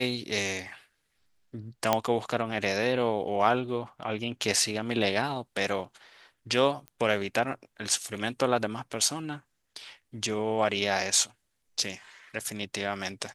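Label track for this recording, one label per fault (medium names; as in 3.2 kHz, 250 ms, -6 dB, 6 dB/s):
1.930000	1.930000	pop -8 dBFS
6.880000	6.880000	pop -28 dBFS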